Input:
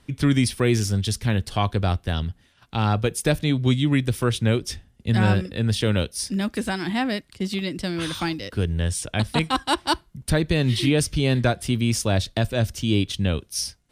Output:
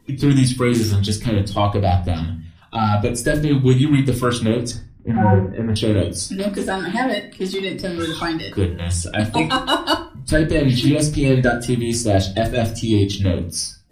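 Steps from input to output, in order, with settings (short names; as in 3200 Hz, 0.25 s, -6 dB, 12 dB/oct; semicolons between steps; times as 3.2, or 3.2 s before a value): bin magnitudes rounded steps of 30 dB; 4.71–5.76 inverse Chebyshev low-pass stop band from 9200 Hz, stop band 80 dB; reverb RT60 0.40 s, pre-delay 3 ms, DRR 2.5 dB; gain +2.5 dB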